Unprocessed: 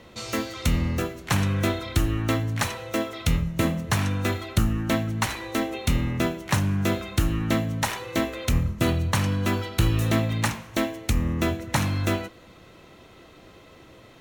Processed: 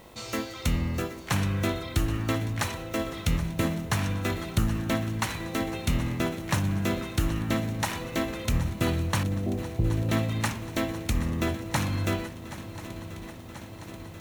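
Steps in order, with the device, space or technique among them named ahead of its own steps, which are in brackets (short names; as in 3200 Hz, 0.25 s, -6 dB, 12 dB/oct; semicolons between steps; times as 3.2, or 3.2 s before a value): 9.23–10.09 elliptic low-pass 720 Hz; swung echo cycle 1.036 s, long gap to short 3:1, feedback 69%, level -15.5 dB; video cassette with head-switching buzz (buzz 50 Hz, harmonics 22, -51 dBFS -1 dB/oct; white noise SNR 33 dB); gain -3.5 dB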